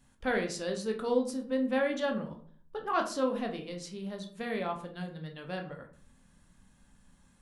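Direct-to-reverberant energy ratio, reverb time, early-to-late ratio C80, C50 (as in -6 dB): 3.5 dB, 0.50 s, 15.0 dB, 10.0 dB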